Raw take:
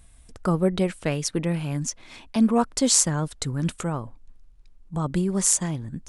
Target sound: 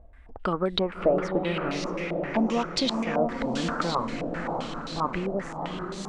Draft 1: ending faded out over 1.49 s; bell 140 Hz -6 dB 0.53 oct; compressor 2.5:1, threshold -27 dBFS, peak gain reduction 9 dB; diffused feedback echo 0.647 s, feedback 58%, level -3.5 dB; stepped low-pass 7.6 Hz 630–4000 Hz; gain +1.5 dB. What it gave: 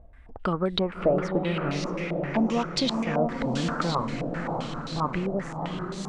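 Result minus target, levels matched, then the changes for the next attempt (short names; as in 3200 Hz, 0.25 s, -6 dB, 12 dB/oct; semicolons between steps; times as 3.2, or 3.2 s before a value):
125 Hz band +4.0 dB
change: bell 140 Hz -16 dB 0.53 oct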